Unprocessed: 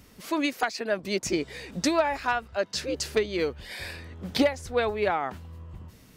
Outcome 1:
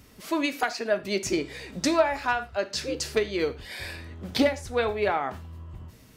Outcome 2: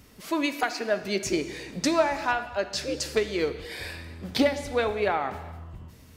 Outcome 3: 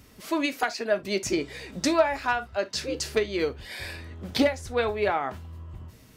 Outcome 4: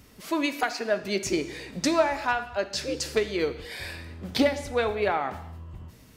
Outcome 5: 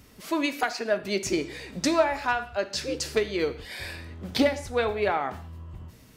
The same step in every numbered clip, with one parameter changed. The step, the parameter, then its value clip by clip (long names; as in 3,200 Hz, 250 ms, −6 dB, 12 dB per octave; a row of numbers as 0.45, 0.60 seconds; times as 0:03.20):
reverb whose tail is shaped and stops, gate: 140, 480, 90, 320, 210 milliseconds